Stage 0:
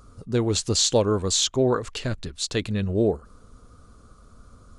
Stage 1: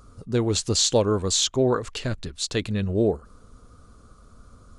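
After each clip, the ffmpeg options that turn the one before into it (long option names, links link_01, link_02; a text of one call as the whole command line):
ffmpeg -i in.wav -af anull out.wav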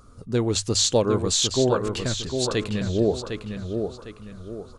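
ffmpeg -i in.wav -filter_complex "[0:a]bandreject=frequency=50:width_type=h:width=6,bandreject=frequency=100:width_type=h:width=6,asplit=2[link_01][link_02];[link_02]adelay=755,lowpass=frequency=4600:poles=1,volume=-6dB,asplit=2[link_03][link_04];[link_04]adelay=755,lowpass=frequency=4600:poles=1,volume=0.38,asplit=2[link_05][link_06];[link_06]adelay=755,lowpass=frequency=4600:poles=1,volume=0.38,asplit=2[link_07][link_08];[link_08]adelay=755,lowpass=frequency=4600:poles=1,volume=0.38,asplit=2[link_09][link_10];[link_10]adelay=755,lowpass=frequency=4600:poles=1,volume=0.38[link_11];[link_01][link_03][link_05][link_07][link_09][link_11]amix=inputs=6:normalize=0" out.wav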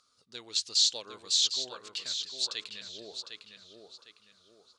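ffmpeg -i in.wav -af "bandpass=frequency=4300:width_type=q:width=2:csg=0" out.wav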